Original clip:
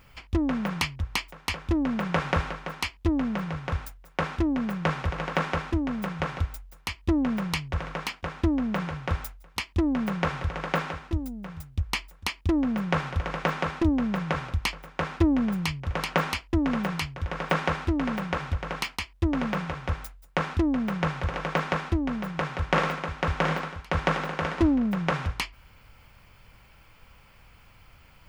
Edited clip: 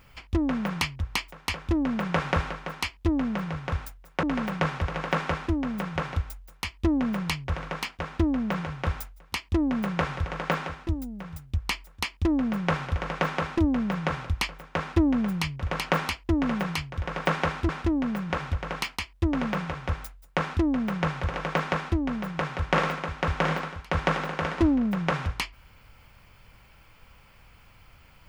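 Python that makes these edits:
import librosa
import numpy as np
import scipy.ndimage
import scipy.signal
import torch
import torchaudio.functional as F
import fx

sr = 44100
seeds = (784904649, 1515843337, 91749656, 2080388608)

y = fx.edit(x, sr, fx.swap(start_s=4.23, length_s=0.61, other_s=17.93, other_length_s=0.37), tone=tone)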